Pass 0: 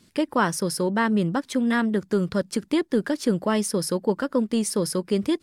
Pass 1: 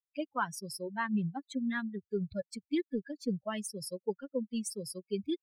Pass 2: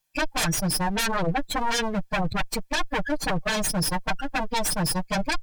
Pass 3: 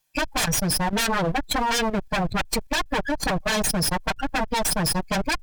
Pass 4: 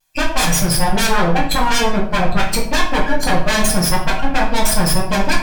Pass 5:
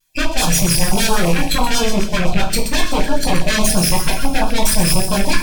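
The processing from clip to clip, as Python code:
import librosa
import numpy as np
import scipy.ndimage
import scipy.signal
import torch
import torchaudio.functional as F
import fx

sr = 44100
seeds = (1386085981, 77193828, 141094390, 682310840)

y1 = fx.bin_expand(x, sr, power=3.0)
y1 = F.gain(torch.from_numpy(y1), -6.0).numpy()
y2 = fx.lower_of_two(y1, sr, delay_ms=1.2)
y2 = fx.fold_sine(y2, sr, drive_db=16, ceiling_db=-22.0)
y2 = y2 + 0.55 * np.pad(y2, (int(6.5 * sr / 1000.0), 0))[:len(y2)]
y3 = fx.clip_asym(y2, sr, top_db=-30.5, bottom_db=-20.0)
y3 = fx.level_steps(y3, sr, step_db=10)
y3 = F.gain(torch.from_numpy(y3), 7.5).numpy()
y4 = fx.room_shoebox(y3, sr, seeds[0], volume_m3=76.0, walls='mixed', distance_m=0.92)
y4 = fx.vibrato(y4, sr, rate_hz=0.84, depth_cents=30.0)
y4 = F.gain(torch.from_numpy(y4), 3.0).numpy()
y5 = fx.rattle_buzz(y4, sr, strikes_db=-21.0, level_db=-15.0)
y5 = fx.echo_wet_highpass(y5, sr, ms=127, feedback_pct=65, hz=4400.0, wet_db=-6.5)
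y5 = fx.filter_held_notch(y5, sr, hz=12.0, low_hz=720.0, high_hz=2000.0)
y5 = F.gain(torch.from_numpy(y5), 1.0).numpy()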